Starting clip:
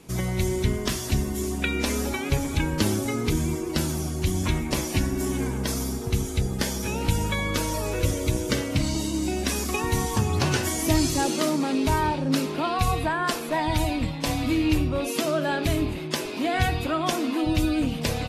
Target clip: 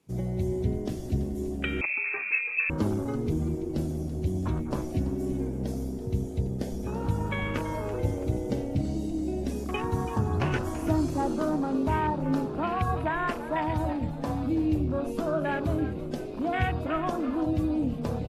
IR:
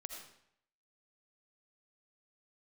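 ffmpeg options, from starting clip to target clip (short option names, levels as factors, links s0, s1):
-filter_complex "[0:a]highpass=f=58:w=0.5412,highpass=f=58:w=1.3066,afwtdn=0.0316,asplit=5[s0][s1][s2][s3][s4];[s1]adelay=333,afreqshift=-68,volume=0.224[s5];[s2]adelay=666,afreqshift=-136,volume=0.101[s6];[s3]adelay=999,afreqshift=-204,volume=0.0452[s7];[s4]adelay=1332,afreqshift=-272,volume=0.0204[s8];[s0][s5][s6][s7][s8]amix=inputs=5:normalize=0,asettb=1/sr,asplit=3[s9][s10][s11];[s9]atrim=end=1.814[s12];[s10]atrim=start=1.81:end=2.7,asetpts=PTS-STARTPTS,afade=t=in:d=0.004:c=qsin,afade=t=out:st=0.886:d=0.004:c=qsin,lowpass=f=2300:t=q:w=0.5098,lowpass=f=2300:t=q:w=0.6013,lowpass=f=2300:t=q:w=0.9,lowpass=f=2300:t=q:w=2.563,afreqshift=-2700[s13];[s11]atrim=start=2.696[s14];[s12][s13]acrossfade=d=0.004:c1=hsin:c2=qsin[s15];[s15][s14]acrossfade=d=0.004:c1=qsin:c2=hsin,volume=0.708"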